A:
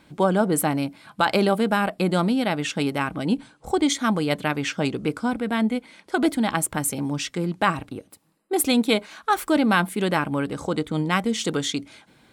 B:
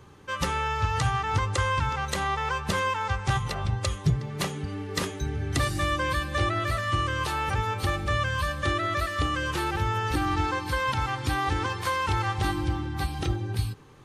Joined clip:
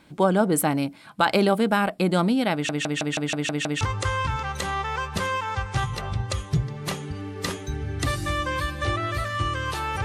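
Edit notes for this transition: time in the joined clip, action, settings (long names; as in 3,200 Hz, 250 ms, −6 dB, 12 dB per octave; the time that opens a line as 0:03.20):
A
0:02.53: stutter in place 0.16 s, 8 plays
0:03.81: continue with B from 0:01.34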